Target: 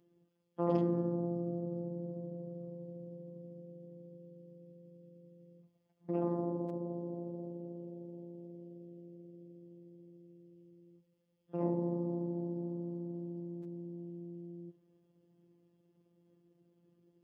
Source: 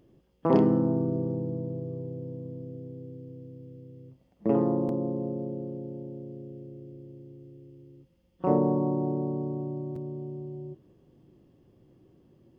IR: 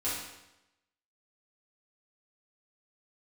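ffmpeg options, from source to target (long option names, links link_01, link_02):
-af "atempo=0.73,afftfilt=real='hypot(re,im)*cos(PI*b)':imag='0':win_size=1024:overlap=0.75,highpass=70,volume=-6.5dB"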